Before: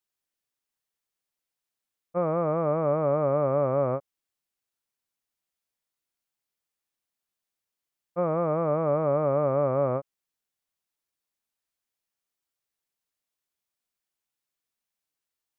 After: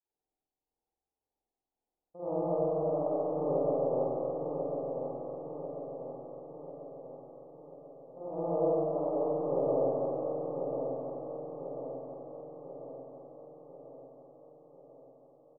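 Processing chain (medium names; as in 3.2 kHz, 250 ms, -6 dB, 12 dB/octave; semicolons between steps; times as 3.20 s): Chebyshev low-pass 900 Hz, order 4; peaking EQ 130 Hz -12.5 dB 0.48 oct; peak limiter -28 dBFS, peak gain reduction 11.5 dB; square tremolo 1.8 Hz, depth 60%, duty 60%; doubling 45 ms -8.5 dB; feedback delay 1042 ms, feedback 55%, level -6.5 dB; reverberation RT60 3.7 s, pre-delay 45 ms, DRR -11.5 dB; trim -5 dB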